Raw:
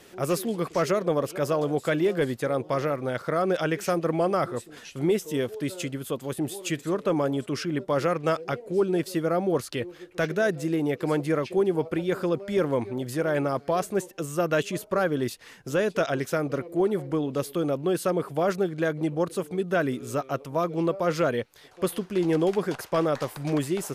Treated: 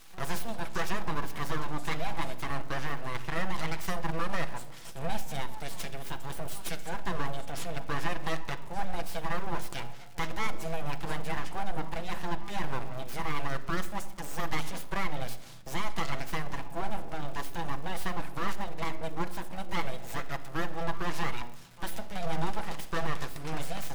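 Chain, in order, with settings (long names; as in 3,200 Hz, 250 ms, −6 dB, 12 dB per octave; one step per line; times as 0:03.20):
low-shelf EQ 360 Hz −6 dB
mains-hum notches 60/120/180/240/300/360/420/480 Hz
in parallel at 0 dB: downward compressor, threshold −34 dBFS, peak gain reduction 12.5 dB
on the sum: surface crackle 190 per second −37 dBFS
full-wave rectification
on a send at −8 dB: convolution reverb RT60 0.95 s, pre-delay 6 ms
on the sum: level −6 dB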